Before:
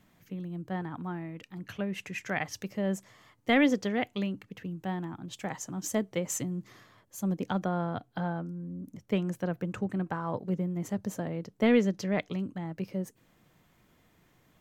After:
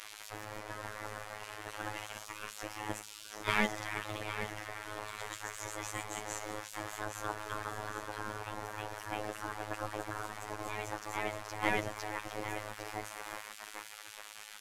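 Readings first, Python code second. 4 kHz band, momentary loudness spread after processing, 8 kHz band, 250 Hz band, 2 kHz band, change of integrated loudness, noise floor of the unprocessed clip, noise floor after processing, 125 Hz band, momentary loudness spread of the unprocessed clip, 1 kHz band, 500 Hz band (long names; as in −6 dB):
−0.5 dB, 10 LU, −2.5 dB, −15.5 dB, −0.5 dB, −7.5 dB, −66 dBFS, −50 dBFS, −12.0 dB, 14 LU, 0.0 dB, −8.5 dB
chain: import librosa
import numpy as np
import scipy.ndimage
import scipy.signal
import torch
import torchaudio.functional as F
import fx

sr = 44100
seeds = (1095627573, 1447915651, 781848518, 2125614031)

p1 = fx.delta_mod(x, sr, bps=64000, step_db=-38.5)
p2 = fx.echo_pitch(p1, sr, ms=168, semitones=1, count=2, db_per_echo=-3.0)
p3 = fx.level_steps(p2, sr, step_db=23)
p4 = p2 + (p3 * 10.0 ** (-2.0 / 20.0))
p5 = fx.high_shelf(p4, sr, hz=2500.0, db=-11.5)
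p6 = p5 + fx.echo_feedback(p5, sr, ms=803, feedback_pct=36, wet_db=-10, dry=0)
p7 = fx.spec_gate(p6, sr, threshold_db=-20, keep='weak')
p8 = fx.hum_notches(p7, sr, base_hz=60, count=4)
p9 = fx.robotise(p8, sr, hz=106.0)
p10 = fx.dynamic_eq(p9, sr, hz=3400.0, q=0.76, threshold_db=-56.0, ratio=4.0, max_db=-5)
y = p10 * 10.0 ** (7.0 / 20.0)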